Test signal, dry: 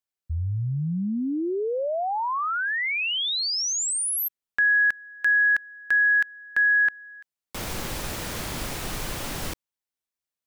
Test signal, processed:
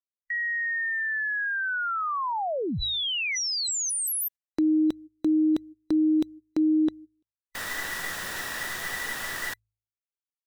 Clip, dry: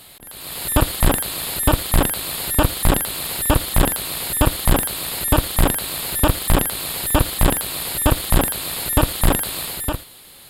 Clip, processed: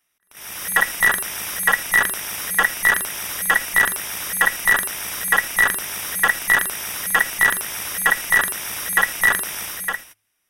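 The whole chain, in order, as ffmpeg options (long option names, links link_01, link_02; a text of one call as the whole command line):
ffmpeg -i in.wav -af "afftfilt=real='real(if(between(b,1,1012),(2*floor((b-1)/92)+1)*92-b,b),0)':imag='imag(if(between(b,1,1012),(2*floor((b-1)/92)+1)*92-b,b),0)*if(between(b,1,1012),-1,1)':win_size=2048:overlap=0.75,agate=range=-26dB:threshold=-34dB:ratio=16:release=178:detection=rms,bandreject=frequency=53.57:width_type=h:width=4,bandreject=frequency=107.14:width_type=h:width=4,volume=-2dB" out.wav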